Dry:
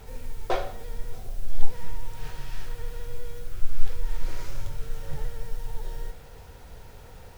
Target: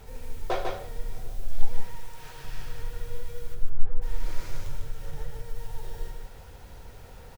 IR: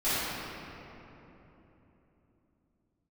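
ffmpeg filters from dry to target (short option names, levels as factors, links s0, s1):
-filter_complex "[0:a]asettb=1/sr,asplit=3[s0][s1][s2];[s0]atrim=end=1.804[s3];[s1]atrim=start=1.8:end=2.45,asetpts=PTS-STARTPTS,afade=t=in:d=0.004:c=qsin,afade=t=out:st=0.646:d=0.004:c=qsin,lowshelf=f=240:g=-10.5[s4];[s2]atrim=start=2.446[s5];[s3][s4]acrossfade=d=0.004:c1=hsin:c2=qsin[s6];[s6][s5]acrossfade=d=0.004:c1=qsin:c2=hsin,asplit=3[s7][s8][s9];[s7]afade=t=out:st=3.54:d=0.02[s10];[s8]lowpass=1100,afade=t=in:st=3.54:d=0.02,afade=t=out:st=4.01:d=0.02[s11];[s9]afade=t=in:st=4.01:d=0.02[s12];[s10][s11][s12]amix=inputs=3:normalize=0,asettb=1/sr,asplit=3[s13][s14][s15];[s13]atrim=end=4.664[s16];[s14]atrim=start=4.66:end=5.56,asetpts=PTS-STARTPTS,afade=t=in:d=0.004:c=qsin,afade=t=out:st=0.896:d=0.004:c=qsin,acompressor=threshold=0.0631:ratio=6[s17];[s15]atrim=start=5.556[s18];[s16][s17]acrossfade=d=0.004:c1=hsin:c2=qsin[s19];[s19][s18]acrossfade=d=0.004:c1=qsin:c2=hsin,aecho=1:1:149:0.668,volume=0.794"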